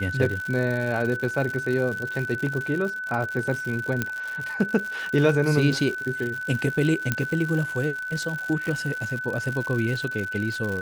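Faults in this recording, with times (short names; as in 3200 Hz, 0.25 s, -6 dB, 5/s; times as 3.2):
crackle 150/s -29 dBFS
tone 1500 Hz -29 dBFS
4.02 pop -10 dBFS
7.12 pop -8 dBFS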